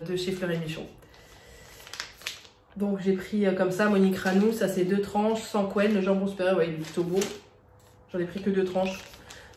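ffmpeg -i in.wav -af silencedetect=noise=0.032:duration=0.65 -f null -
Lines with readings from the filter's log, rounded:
silence_start: 0.82
silence_end: 1.87 | silence_duration: 1.05
silence_start: 7.32
silence_end: 8.14 | silence_duration: 0.83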